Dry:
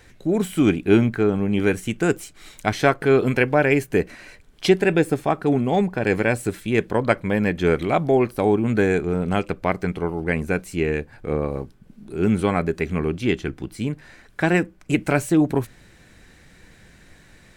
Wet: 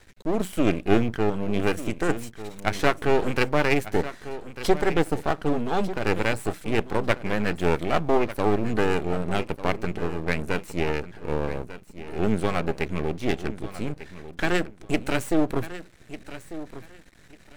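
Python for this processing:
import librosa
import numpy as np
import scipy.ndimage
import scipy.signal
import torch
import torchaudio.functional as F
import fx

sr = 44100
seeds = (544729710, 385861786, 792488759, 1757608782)

y = fx.peak_eq(x, sr, hz=2500.0, db=-12.5, octaves=0.4, at=(3.91, 4.9))
y = np.maximum(y, 0.0)
y = fx.echo_feedback(y, sr, ms=1196, feedback_pct=21, wet_db=-14)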